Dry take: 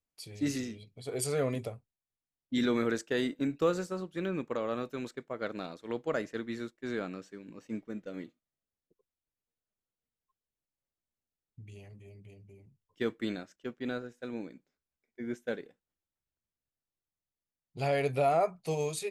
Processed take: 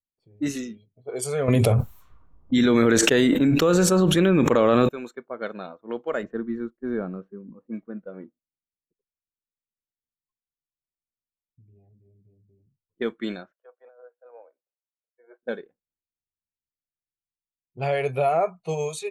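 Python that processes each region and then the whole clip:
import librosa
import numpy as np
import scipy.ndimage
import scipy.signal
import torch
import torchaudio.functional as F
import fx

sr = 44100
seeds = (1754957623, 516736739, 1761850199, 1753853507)

y = fx.chain(x, sr, fx.low_shelf(hz=230.0, db=4.0),
    fx.env_flatten(amount_pct=100), at=(1.48, 4.89))
y = fx.chain(y, sr, fx.lowpass(hz=1200.0, slope=6),
    fx.low_shelf(hz=300.0, db=8.0), at=(6.23, 7.54))
y = fx.chain(y, sr, fx.steep_highpass(hz=530.0, slope=36),
    fx.air_absorb(metres=150.0),
    fx.over_compress(threshold_db=-48.0, ratio=-1.0), at=(13.51, 15.43))
y = fx.noise_reduce_blind(y, sr, reduce_db=12)
y = fx.env_lowpass(y, sr, base_hz=360.0, full_db=-30.0)
y = fx.notch(y, sr, hz=4900.0, q=7.2)
y = y * 10.0 ** (5.0 / 20.0)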